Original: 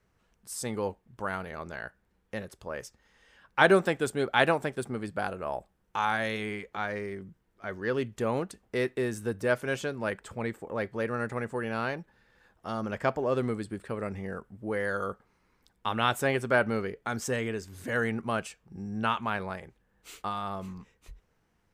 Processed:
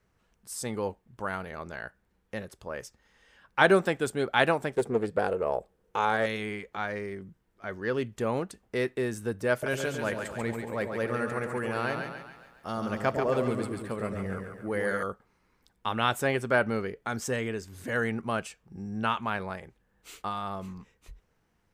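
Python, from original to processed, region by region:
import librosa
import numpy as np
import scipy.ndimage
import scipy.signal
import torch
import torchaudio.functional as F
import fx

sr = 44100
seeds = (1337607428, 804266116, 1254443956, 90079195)

y = fx.chain(x, sr, fx.peak_eq(hz=460.0, db=14.0, octaves=0.57),
    fx.doppler_dist(depth_ms=0.23), at=(4.76, 6.26))
y = fx.chain(y, sr, fx.high_shelf(hz=10000.0, db=9.0),
    fx.echo_split(split_hz=670.0, low_ms=104, high_ms=139, feedback_pct=52, wet_db=-5), at=(9.52, 15.03))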